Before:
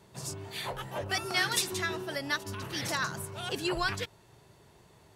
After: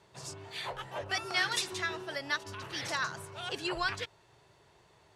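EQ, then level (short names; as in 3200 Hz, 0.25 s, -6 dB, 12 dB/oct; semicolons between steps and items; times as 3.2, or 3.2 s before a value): air absorption 58 m; bell 220 Hz -6 dB 0.6 oct; low shelf 410 Hz -7 dB; 0.0 dB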